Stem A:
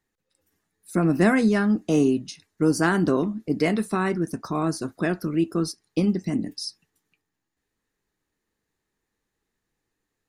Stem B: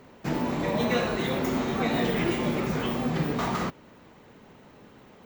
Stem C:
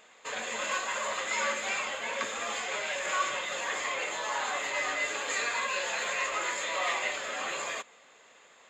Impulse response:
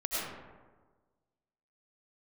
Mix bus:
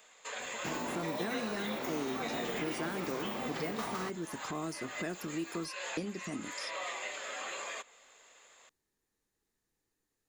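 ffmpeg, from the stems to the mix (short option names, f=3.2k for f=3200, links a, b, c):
-filter_complex "[0:a]lowshelf=f=290:g=11,volume=-7dB,asplit=2[a][b];[1:a]adelay=400,volume=0.5dB[c];[2:a]volume=-4.5dB[d];[b]apad=whole_len=383322[e];[d][e]sidechaincompress=threshold=-36dB:ratio=8:attack=16:release=191[f];[a][c][f]amix=inputs=3:normalize=0,acrossover=split=500|3600[g][h][i];[g]acompressor=threshold=-36dB:ratio=4[j];[h]acompressor=threshold=-39dB:ratio=4[k];[i]acompressor=threshold=-54dB:ratio=4[l];[j][k][l]amix=inputs=3:normalize=0,bass=f=250:g=-9,treble=f=4k:g=7"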